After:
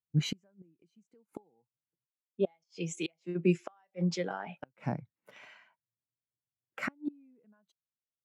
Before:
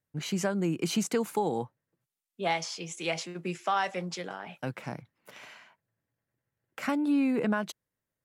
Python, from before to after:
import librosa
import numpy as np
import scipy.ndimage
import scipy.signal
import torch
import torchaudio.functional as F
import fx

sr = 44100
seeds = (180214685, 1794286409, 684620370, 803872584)

y = fx.gate_flip(x, sr, shuts_db=-23.0, range_db=-32)
y = fx.spectral_expand(y, sr, expansion=1.5)
y = y * 10.0 ** (3.5 / 20.0)